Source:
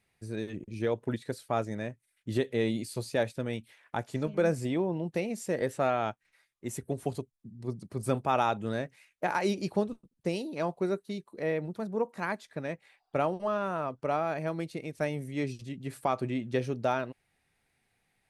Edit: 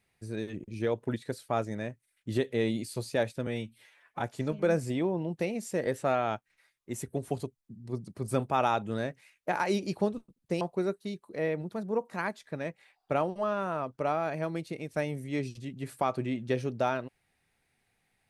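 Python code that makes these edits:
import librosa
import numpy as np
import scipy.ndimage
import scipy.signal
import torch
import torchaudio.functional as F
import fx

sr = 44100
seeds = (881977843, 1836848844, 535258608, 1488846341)

y = fx.edit(x, sr, fx.stretch_span(start_s=3.47, length_s=0.5, factor=1.5),
    fx.cut(start_s=10.36, length_s=0.29), tone=tone)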